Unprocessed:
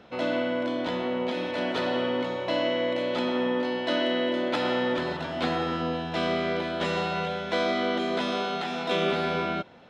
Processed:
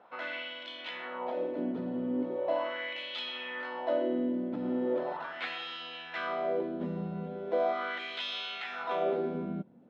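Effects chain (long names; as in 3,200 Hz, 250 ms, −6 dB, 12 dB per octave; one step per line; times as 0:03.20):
auto-filter band-pass sine 0.39 Hz 200–3,200 Hz
level +1.5 dB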